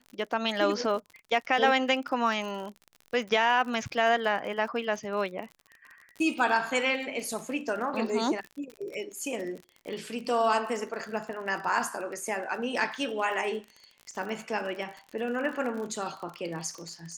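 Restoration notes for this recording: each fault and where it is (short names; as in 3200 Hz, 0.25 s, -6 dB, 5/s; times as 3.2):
crackle 43/s -36 dBFS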